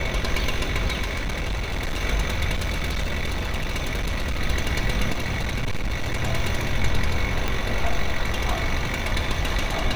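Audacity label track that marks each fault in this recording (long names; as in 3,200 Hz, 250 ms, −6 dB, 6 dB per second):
1.010000	2.020000	clipping −22.5 dBFS
2.550000	4.420000	clipping −21 dBFS
5.120000	6.210000	clipping −21 dBFS
7.480000	7.480000	click −10 dBFS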